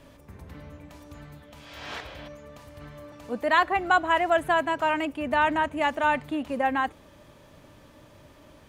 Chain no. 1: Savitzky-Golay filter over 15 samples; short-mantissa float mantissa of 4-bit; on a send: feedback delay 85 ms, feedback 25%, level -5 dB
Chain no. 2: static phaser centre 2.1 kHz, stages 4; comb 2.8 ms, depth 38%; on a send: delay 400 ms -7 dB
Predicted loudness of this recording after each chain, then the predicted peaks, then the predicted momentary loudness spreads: -24.0 LUFS, -28.5 LUFS; -8.5 dBFS, -13.0 dBFS; 20 LU, 21 LU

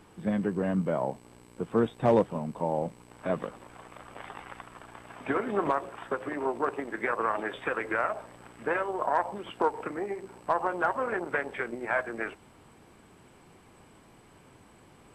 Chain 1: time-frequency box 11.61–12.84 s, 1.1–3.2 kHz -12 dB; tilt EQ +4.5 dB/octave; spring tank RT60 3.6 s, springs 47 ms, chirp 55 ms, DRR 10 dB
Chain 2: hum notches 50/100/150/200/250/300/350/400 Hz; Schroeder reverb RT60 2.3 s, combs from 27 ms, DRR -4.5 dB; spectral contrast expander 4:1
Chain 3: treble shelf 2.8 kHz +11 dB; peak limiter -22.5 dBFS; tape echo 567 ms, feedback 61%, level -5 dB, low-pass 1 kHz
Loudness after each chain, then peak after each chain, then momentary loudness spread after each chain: -32.0 LUFS, -25.5 LUFS, -34.5 LUFS; -13.0 dBFS, -7.0 dBFS, -20.0 dBFS; 23 LU, 23 LU, 17 LU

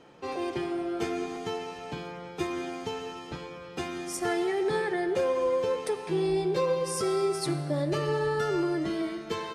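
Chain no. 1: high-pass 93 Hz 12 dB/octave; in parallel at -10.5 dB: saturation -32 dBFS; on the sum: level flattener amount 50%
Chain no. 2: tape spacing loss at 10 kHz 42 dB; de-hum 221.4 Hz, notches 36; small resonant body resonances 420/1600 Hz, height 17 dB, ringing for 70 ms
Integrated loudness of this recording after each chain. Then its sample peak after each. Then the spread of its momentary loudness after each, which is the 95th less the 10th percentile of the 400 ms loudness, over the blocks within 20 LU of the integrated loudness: -26.5 LUFS, -23.5 LUFS; -15.5 dBFS, -8.5 dBFS; 5 LU, 16 LU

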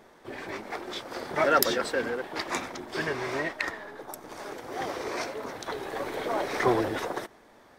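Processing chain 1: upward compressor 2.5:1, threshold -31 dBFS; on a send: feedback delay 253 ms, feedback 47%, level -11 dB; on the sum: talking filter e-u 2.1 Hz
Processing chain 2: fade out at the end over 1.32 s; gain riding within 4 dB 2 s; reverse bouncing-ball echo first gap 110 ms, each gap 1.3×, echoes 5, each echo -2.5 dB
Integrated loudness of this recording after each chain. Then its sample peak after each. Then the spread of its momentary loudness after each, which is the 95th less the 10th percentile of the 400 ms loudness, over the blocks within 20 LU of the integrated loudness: -40.5 LUFS, -26.5 LUFS; -20.5 dBFS, -3.5 dBFS; 14 LU, 11 LU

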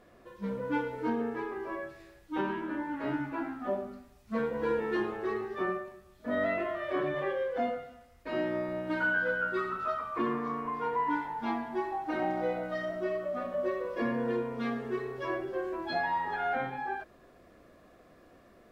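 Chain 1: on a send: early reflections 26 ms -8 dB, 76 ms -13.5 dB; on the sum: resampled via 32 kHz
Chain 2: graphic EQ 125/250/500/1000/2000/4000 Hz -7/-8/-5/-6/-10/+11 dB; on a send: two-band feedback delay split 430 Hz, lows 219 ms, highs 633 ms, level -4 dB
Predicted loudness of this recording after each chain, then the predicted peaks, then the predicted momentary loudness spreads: -32.5 LUFS, -39.5 LUFS; -17.5 dBFS, -23.5 dBFS; 7 LU, 8 LU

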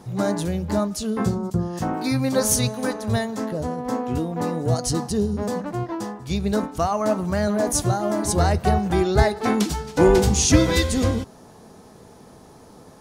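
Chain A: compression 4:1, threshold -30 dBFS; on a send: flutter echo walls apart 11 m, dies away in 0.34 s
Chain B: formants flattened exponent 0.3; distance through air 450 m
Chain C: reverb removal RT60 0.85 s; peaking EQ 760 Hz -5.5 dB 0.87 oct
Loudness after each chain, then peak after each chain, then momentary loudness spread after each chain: -32.0 LUFS, -25.5 LUFS, -24.5 LUFS; -17.0 dBFS, -4.5 dBFS, -3.5 dBFS; 16 LU, 9 LU, 11 LU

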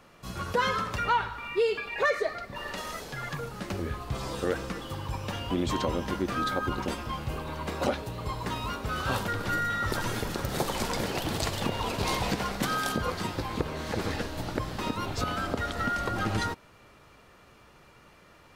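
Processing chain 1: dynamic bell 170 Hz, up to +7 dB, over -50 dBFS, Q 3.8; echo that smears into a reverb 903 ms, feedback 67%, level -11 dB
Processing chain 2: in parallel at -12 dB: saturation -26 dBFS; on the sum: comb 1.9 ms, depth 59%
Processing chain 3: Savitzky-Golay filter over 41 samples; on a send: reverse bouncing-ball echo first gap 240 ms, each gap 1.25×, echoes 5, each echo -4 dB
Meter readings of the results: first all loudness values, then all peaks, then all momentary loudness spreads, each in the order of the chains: -30.0 LUFS, -28.5 LUFS, -30.0 LUFS; -12.0 dBFS, -11.0 dBFS, -12.5 dBFS; 9 LU, 8 LU, 8 LU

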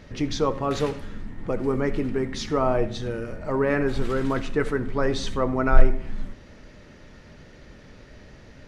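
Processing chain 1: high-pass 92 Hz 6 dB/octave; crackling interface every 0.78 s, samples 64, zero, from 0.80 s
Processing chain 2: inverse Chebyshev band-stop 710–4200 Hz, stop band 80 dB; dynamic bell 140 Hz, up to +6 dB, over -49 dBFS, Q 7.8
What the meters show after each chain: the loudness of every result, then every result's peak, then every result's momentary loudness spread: -26.5 LUFS, -34.0 LUFS; -9.5 dBFS, -3.0 dBFS; 13 LU, 23 LU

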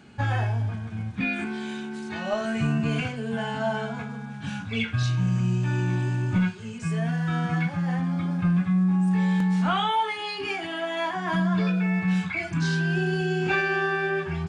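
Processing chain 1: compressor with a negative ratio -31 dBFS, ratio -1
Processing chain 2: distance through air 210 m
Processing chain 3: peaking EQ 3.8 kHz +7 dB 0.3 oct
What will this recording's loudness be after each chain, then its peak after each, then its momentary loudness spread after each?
-30.5 LUFS, -26.5 LUFS, -26.0 LUFS; -15.0 dBFS, -13.0 dBFS, -12.5 dBFS; 8 LU, 10 LU, 9 LU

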